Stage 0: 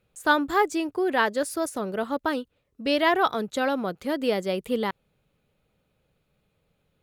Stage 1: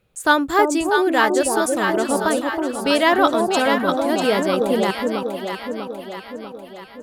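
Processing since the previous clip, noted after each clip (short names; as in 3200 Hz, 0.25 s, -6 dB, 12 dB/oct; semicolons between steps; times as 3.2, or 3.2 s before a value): echo with dull and thin repeats by turns 0.322 s, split 820 Hz, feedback 74%, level -2 dB; dynamic EQ 8200 Hz, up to +7 dB, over -51 dBFS, Q 1.3; gain +5 dB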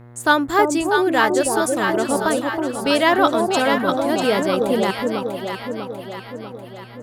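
buzz 120 Hz, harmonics 18, -43 dBFS -7 dB/oct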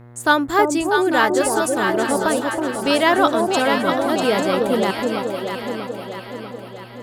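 thinning echo 0.847 s, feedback 23%, level -10.5 dB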